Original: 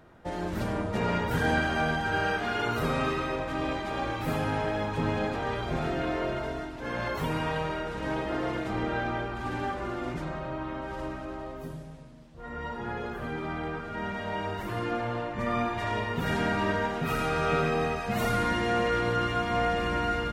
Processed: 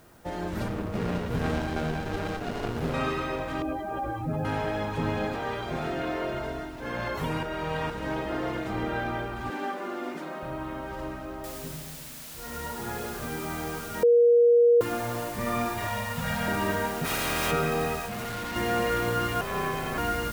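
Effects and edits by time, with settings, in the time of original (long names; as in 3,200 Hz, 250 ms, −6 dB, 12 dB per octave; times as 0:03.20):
0:00.68–0:02.94: windowed peak hold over 33 samples
0:03.62–0:04.45: expanding power law on the bin magnitudes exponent 2.1
0:05.36–0:06.34: low-shelf EQ 110 Hz −8 dB
0:07.43–0:07.90: reverse
0:09.50–0:10.43: Butterworth high-pass 200 Hz
0:11.44: noise floor change −63 dB −43 dB
0:14.03–0:14.81: beep over 475 Hz −15 dBFS
0:15.87–0:16.48: elliptic band-stop filter 230–490 Hz
0:17.04–0:17.50: ceiling on every frequency bin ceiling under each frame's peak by 18 dB
0:18.06–0:18.56: hard clipping −32.5 dBFS
0:19.41–0:19.98: ring modulation 310 Hz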